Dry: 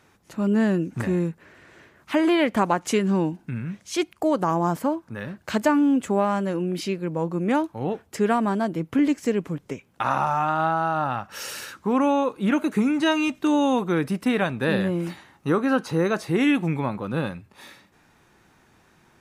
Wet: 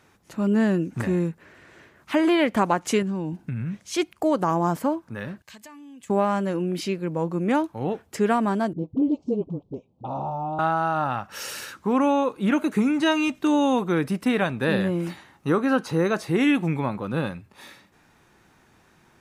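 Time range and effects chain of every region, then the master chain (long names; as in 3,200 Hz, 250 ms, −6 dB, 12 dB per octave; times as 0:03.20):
0:03.02–0:03.77: parametric band 100 Hz +6.5 dB 1.9 octaves + downward compressor, threshold −25 dBFS
0:05.42–0:06.10: guitar amp tone stack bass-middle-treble 5-5-5 + downward compressor 4 to 1, threshold −42 dBFS + Butterworth band-reject 1,400 Hz, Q 5.8
0:08.73–0:10.59: Chebyshev band-stop filter 770–3,900 Hz + head-to-tape spacing loss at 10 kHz 39 dB + all-pass dispersion highs, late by 46 ms, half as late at 370 Hz
whole clip: no processing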